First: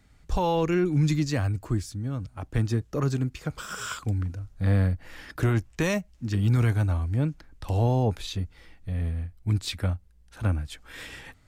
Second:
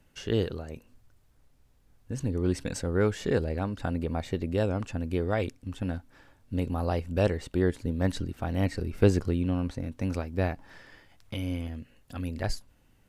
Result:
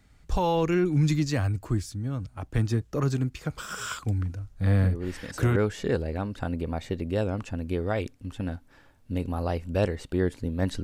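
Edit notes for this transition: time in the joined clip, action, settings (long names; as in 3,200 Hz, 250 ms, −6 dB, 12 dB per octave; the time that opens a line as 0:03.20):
first
0:04.79: mix in second from 0:02.21 0.77 s −6 dB
0:05.56: continue with second from 0:02.98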